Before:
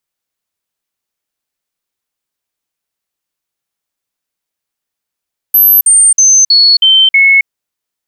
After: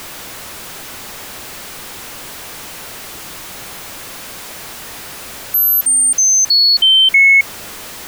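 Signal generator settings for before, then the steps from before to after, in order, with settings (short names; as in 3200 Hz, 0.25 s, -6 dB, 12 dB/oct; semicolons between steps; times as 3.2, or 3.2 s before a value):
stepped sine 12400 Hz down, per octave 2, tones 6, 0.27 s, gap 0.05 s -3 dBFS
zero-crossing step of -19 dBFS; high shelf 3000 Hz -7.5 dB; stuck buffer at 6.83, samples 512, times 3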